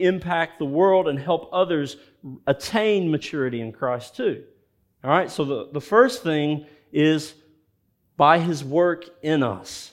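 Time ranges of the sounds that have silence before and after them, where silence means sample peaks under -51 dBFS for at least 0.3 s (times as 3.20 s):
5.03–7.51 s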